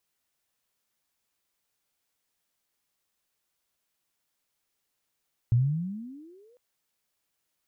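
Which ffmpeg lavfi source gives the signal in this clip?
-f lavfi -i "aevalsrc='pow(10,(-17-40*t/1.05)/20)*sin(2*PI*113*1.05/(26*log(2)/12)*(exp(26*log(2)/12*t/1.05)-1))':d=1.05:s=44100"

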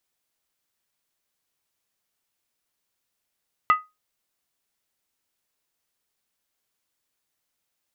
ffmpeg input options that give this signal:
-f lavfi -i "aevalsrc='0.299*pow(10,-3*t/0.22)*sin(2*PI*1250*t)+0.1*pow(10,-3*t/0.174)*sin(2*PI*1992.5*t)+0.0335*pow(10,-3*t/0.151)*sin(2*PI*2670*t)+0.0112*pow(10,-3*t/0.145)*sin(2*PI*2870*t)+0.00376*pow(10,-3*t/0.135)*sin(2*PI*3316.2*t)':d=0.63:s=44100"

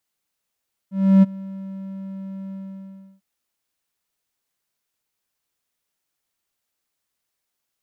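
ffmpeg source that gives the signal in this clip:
-f lavfi -i "aevalsrc='0.531*(1-4*abs(mod(193*t+0.25,1)-0.5))':d=2.297:s=44100,afade=t=in:d=0.316,afade=t=out:st=0.316:d=0.024:silence=0.075,afade=t=out:st=1.61:d=0.687"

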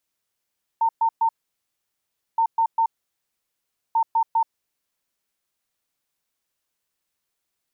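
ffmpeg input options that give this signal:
-f lavfi -i "aevalsrc='0.158*sin(2*PI*908*t)*clip(min(mod(mod(t,1.57),0.2),0.08-mod(mod(t,1.57),0.2))/0.005,0,1)*lt(mod(t,1.57),0.6)':d=4.71:s=44100"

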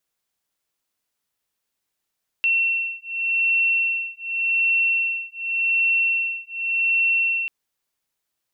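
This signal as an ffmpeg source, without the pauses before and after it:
-f lavfi -i "aevalsrc='0.0794*(sin(2*PI*2710*t)+sin(2*PI*2710.87*t))':d=5.04:s=44100"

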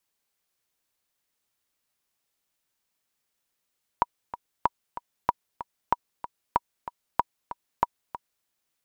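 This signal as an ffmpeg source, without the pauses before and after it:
-f lavfi -i "aevalsrc='pow(10,(-7-13.5*gte(mod(t,2*60/189),60/189))/20)*sin(2*PI*961*mod(t,60/189))*exp(-6.91*mod(t,60/189)/0.03)':d=4.44:s=44100"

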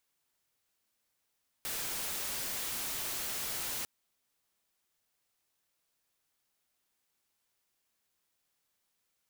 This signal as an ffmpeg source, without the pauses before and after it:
-f lavfi -i "anoisesrc=c=white:a=0.0245:d=2.2:r=44100:seed=1"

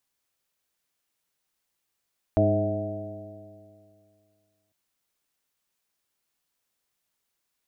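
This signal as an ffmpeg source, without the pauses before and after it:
-f lavfi -i "aevalsrc='0.0794*pow(10,-3*t/2.35)*sin(2*PI*101.18*t)+0.0447*pow(10,-3*t/2.35)*sin(2*PI*203.41*t)+0.0668*pow(10,-3*t/2.35)*sin(2*PI*307.74*t)+0.0282*pow(10,-3*t/2.35)*sin(2*PI*415.16*t)+0.0237*pow(10,-3*t/2.35)*sin(2*PI*526.63*t)+0.106*pow(10,-3*t/2.35)*sin(2*PI*643.05*t)+0.0141*pow(10,-3*t/2.35)*sin(2*PI*765.23*t)':d=2.35:s=44100"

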